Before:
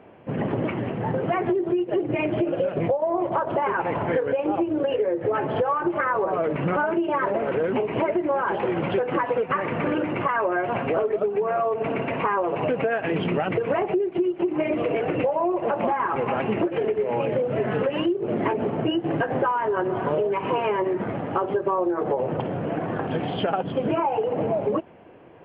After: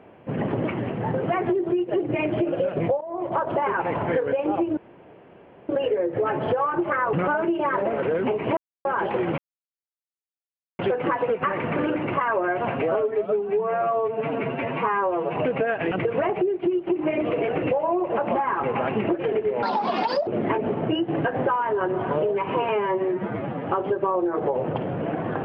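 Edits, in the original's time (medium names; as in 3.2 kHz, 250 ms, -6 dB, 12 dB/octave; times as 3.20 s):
3.01–3.38 s: fade in, from -16 dB
4.77 s: insert room tone 0.92 s
6.21–6.62 s: delete
8.06–8.34 s: mute
8.87 s: insert silence 1.41 s
10.90–12.59 s: stretch 1.5×
13.15–13.44 s: delete
17.15–18.23 s: speed 167%
20.65–21.29 s: stretch 1.5×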